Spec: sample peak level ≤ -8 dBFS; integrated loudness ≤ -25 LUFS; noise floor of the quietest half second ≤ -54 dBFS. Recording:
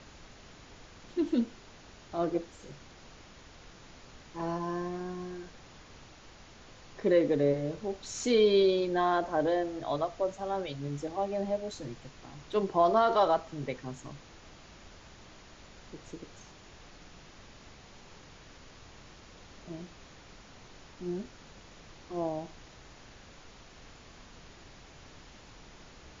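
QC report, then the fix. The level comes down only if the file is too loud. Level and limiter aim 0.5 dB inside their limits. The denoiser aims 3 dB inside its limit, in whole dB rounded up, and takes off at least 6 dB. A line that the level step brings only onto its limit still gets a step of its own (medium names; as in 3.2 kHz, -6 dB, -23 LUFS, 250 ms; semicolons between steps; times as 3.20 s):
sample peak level -13.5 dBFS: pass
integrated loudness -30.5 LUFS: pass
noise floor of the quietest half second -53 dBFS: fail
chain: noise reduction 6 dB, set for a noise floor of -53 dBFS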